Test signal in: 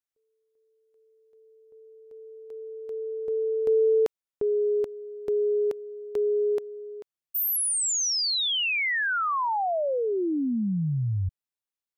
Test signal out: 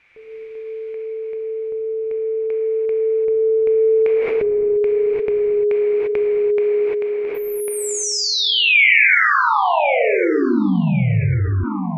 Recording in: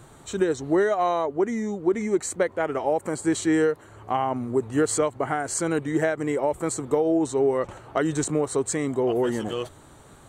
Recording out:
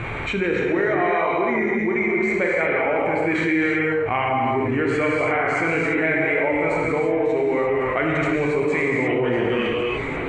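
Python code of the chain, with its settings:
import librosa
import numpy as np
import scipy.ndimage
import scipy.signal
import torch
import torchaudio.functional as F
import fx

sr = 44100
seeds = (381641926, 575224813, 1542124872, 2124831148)

y = fx.lowpass_res(x, sr, hz=2300.0, q=12.0)
y = fx.low_shelf(y, sr, hz=76.0, db=5.5)
y = fx.echo_feedback(y, sr, ms=1098, feedback_pct=28, wet_db=-21.0)
y = fx.rev_gated(y, sr, seeds[0], gate_ms=370, shape='flat', drr_db=-3.0)
y = fx.env_flatten(y, sr, amount_pct=70)
y = y * 10.0 ** (-7.0 / 20.0)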